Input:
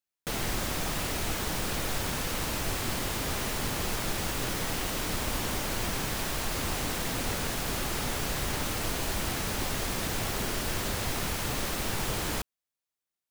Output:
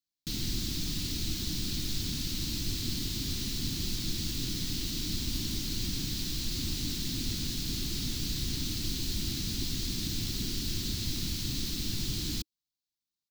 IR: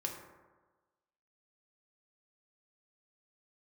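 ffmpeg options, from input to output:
-af "firequalizer=gain_entry='entry(310,0);entry(510,-26);entry(4100,5);entry(9500,-9);entry(15000,-3)':delay=0.05:min_phase=1"

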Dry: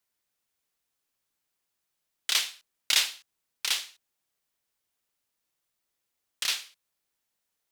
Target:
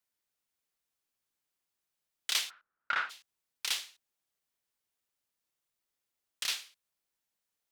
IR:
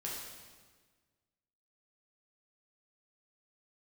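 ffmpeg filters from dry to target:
-filter_complex "[0:a]asplit=3[link_01][link_02][link_03];[link_01]afade=type=out:start_time=2.49:duration=0.02[link_04];[link_02]lowpass=frequency=1400:width_type=q:width=7.4,afade=type=in:start_time=2.49:duration=0.02,afade=type=out:start_time=3.09:duration=0.02[link_05];[link_03]afade=type=in:start_time=3.09:duration=0.02[link_06];[link_04][link_05][link_06]amix=inputs=3:normalize=0,volume=-5dB"

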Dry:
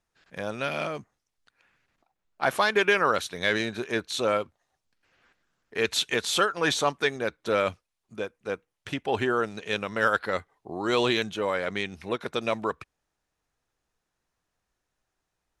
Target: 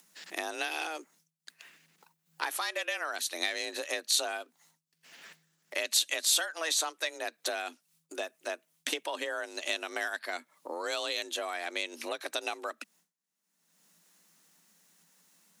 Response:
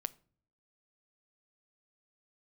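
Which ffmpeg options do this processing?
-af "agate=range=-33dB:threshold=-58dB:ratio=3:detection=peak,acompressor=threshold=-34dB:ratio=12,afreqshift=160,acompressor=mode=upward:threshold=-44dB:ratio=2.5,crystalizer=i=5:c=0"

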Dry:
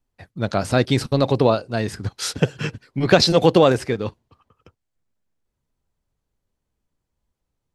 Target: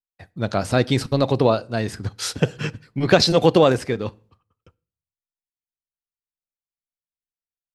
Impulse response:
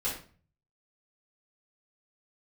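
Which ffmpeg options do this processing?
-filter_complex "[0:a]agate=range=-33dB:threshold=-48dB:ratio=3:detection=peak,asplit=2[link_01][link_02];[1:a]atrim=start_sample=2205,asetrate=41895,aresample=44100[link_03];[link_02][link_03]afir=irnorm=-1:irlink=0,volume=-26.5dB[link_04];[link_01][link_04]amix=inputs=2:normalize=0,volume=-1dB"

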